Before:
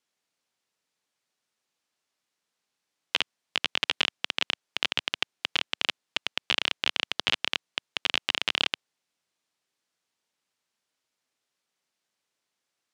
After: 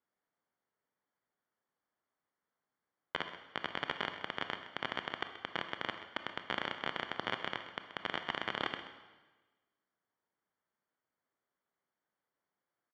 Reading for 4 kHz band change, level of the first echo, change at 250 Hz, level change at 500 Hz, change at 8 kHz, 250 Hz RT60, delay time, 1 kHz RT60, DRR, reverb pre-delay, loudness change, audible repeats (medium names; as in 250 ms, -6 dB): -15.0 dB, -13.5 dB, -1.5 dB, -1.5 dB, under -20 dB, 1.3 s, 130 ms, 1.2 s, 7.0 dB, 15 ms, -11.0 dB, 1